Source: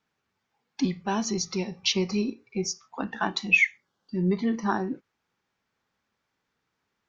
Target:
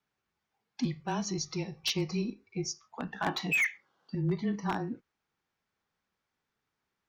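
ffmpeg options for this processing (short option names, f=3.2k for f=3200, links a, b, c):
-filter_complex "[0:a]afreqshift=-23,asettb=1/sr,asplit=3[a][b][c];[a]atrim=end=3.264[d];[b]atrim=start=3.26:end=4.15,asetpts=PTS-STARTPTS,afade=t=in:d=0.004:c=qsin,afade=t=out:st=0.886:d=0.004:c=qsin,asplit=2[e][f];[f]highpass=f=720:p=1,volume=21dB,asoftclip=type=tanh:threshold=-9dB[g];[e][g]amix=inputs=2:normalize=0,lowpass=f=1.4k:p=1,volume=-6dB[h];[c]atrim=start=4.146[i];[d][h]acrossfade=d=0.004:c1=hsin:c2=qsin[j];[j][i]acrossfade=d=0.004:c1=qsin:c2=hsin,aeval=exprs='0.15*(abs(mod(val(0)/0.15+3,4)-2)-1)':c=same,volume=-5.5dB"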